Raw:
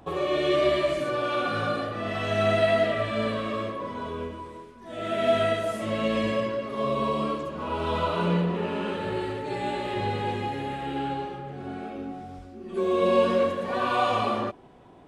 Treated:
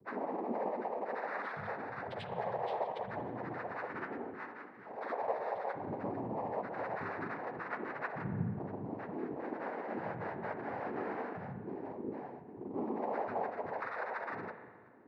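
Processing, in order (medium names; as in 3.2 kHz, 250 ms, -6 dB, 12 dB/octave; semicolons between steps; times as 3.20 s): compression, threshold -30 dBFS, peak gain reduction 13 dB; loudest bins only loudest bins 4; noise-vocoded speech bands 6; spring tank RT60 1.7 s, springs 40/58 ms, chirp 30 ms, DRR 8.5 dB; trim -3 dB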